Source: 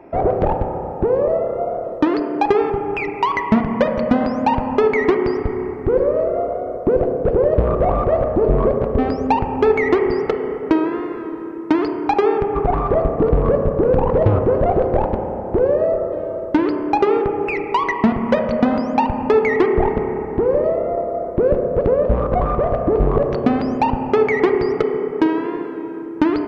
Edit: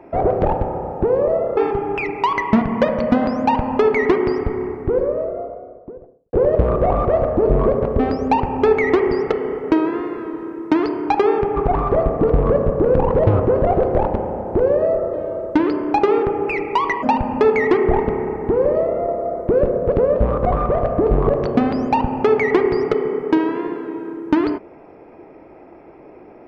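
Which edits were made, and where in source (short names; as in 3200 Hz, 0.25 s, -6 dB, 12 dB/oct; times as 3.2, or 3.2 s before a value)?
1.57–2.56 cut
5.39–7.32 studio fade out
18.02–18.92 cut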